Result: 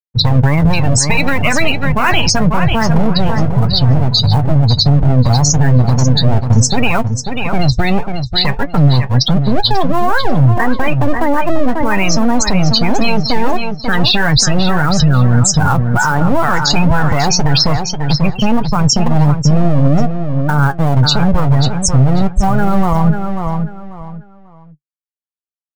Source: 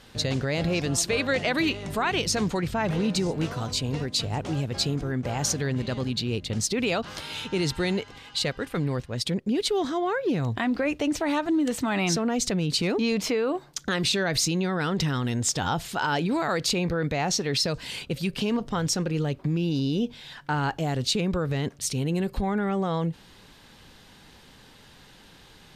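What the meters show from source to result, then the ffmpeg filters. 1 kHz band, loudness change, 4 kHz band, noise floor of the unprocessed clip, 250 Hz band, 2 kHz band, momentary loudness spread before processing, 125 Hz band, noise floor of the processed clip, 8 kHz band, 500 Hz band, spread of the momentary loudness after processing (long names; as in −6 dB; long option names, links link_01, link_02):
+15.0 dB, +13.5 dB, +12.5 dB, −52 dBFS, +12.0 dB, +12.5 dB, 5 LU, +18.5 dB, −40 dBFS, +11.5 dB, +9.0 dB, 6 LU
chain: -filter_complex "[0:a]afwtdn=0.0158,afftfilt=real='re*gte(hypot(re,im),0.0794)':imag='im*gte(hypot(re,im),0.0794)':win_size=1024:overlap=0.75,lowshelf=frequency=66:gain=10,acrossover=split=240|670|3000[link_01][link_02][link_03][link_04];[link_02]aeval=exprs='abs(val(0))':channel_layout=same[link_05];[link_03]acrusher=bits=5:mode=log:mix=0:aa=0.000001[link_06];[link_01][link_05][link_06][link_04]amix=inputs=4:normalize=0,flanger=delay=6.4:depth=2.4:regen=54:speed=1.6:shape=triangular,asplit=2[link_07][link_08];[link_08]adelay=541,lowpass=frequency=4700:poles=1,volume=-9dB,asplit=2[link_09][link_10];[link_10]adelay=541,lowpass=frequency=4700:poles=1,volume=0.27,asplit=2[link_11][link_12];[link_12]adelay=541,lowpass=frequency=4700:poles=1,volume=0.27[link_13];[link_07][link_09][link_11][link_13]amix=inputs=4:normalize=0,alimiter=level_in=24dB:limit=-1dB:release=50:level=0:latency=1,volume=-1dB"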